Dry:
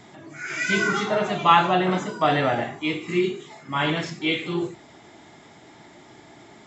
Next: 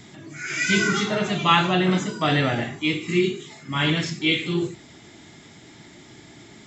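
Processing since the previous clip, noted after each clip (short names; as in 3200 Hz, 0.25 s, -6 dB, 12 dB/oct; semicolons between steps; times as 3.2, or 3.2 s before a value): bell 790 Hz -12 dB 2.1 oct; gain +6.5 dB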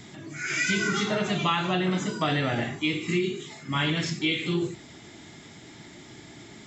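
compressor 6:1, threshold -22 dBFS, peak gain reduction 9.5 dB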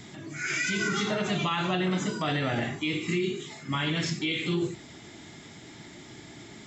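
limiter -19 dBFS, peak gain reduction 7 dB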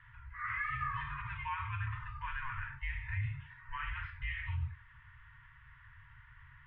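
mistuned SSB -260 Hz 270–2500 Hz; FFT band-reject 140–890 Hz; gain -6 dB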